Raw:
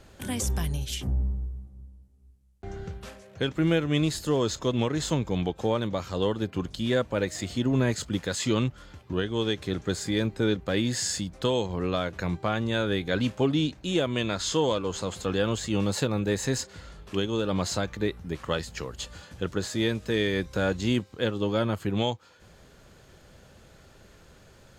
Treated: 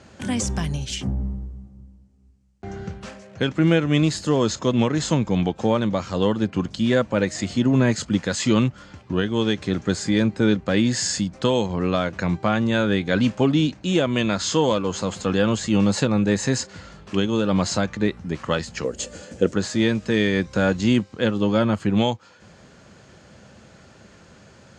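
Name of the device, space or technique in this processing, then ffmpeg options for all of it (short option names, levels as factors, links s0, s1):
car door speaker: -filter_complex "[0:a]highpass=88,equalizer=f=210:t=q:w=4:g=5,equalizer=f=420:t=q:w=4:g=-3,equalizer=f=3600:t=q:w=4:g=-4,lowpass=f=7800:w=0.5412,lowpass=f=7800:w=1.3066,asettb=1/sr,asplit=3[s0][s1][s2];[s0]atrim=end=18.844[s3];[s1]atrim=start=18.84:end=19.54,asetpts=PTS-STARTPTS,afade=t=in:d=0.004:c=qsin,afade=t=out:st=0.696:d=0.004:c=qsin,equalizer=f=125:t=o:w=1:g=-5,equalizer=f=250:t=o:w=1:g=4,equalizer=f=500:t=o:w=1:g=11,equalizer=f=1000:t=o:w=1:g=-8,equalizer=f=4000:t=o:w=1:g=-4,equalizer=f=8000:t=o:w=1:g=8[s4];[s2]atrim=start=19.536[s5];[s3][s4]acrossfade=d=0.004:c1=hsin:c2=qsin[s6];[s6][s5]acrossfade=d=0.004:c1=qsin:c2=hsin,volume=2"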